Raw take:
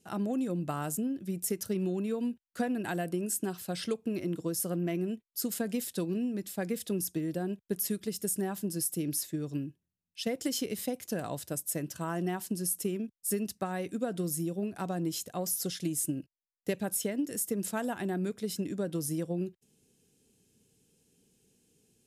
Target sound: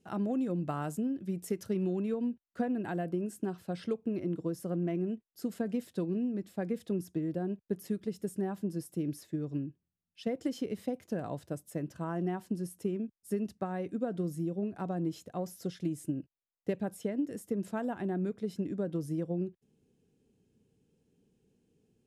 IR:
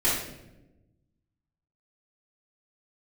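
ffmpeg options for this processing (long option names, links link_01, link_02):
-af "asetnsamples=nb_out_samples=441:pad=0,asendcmd='2.14 lowpass f 1000',lowpass=frequency=2000:poles=1"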